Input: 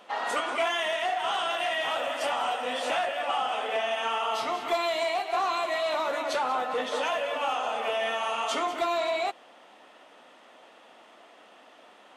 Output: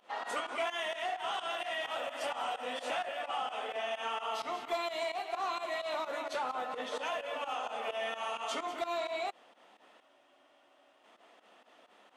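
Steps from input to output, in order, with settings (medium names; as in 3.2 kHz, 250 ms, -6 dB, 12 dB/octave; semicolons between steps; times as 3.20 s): volume shaper 129 bpm, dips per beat 2, -16 dB, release 94 ms; spectral freeze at 10.04 s, 0.99 s; trim -7 dB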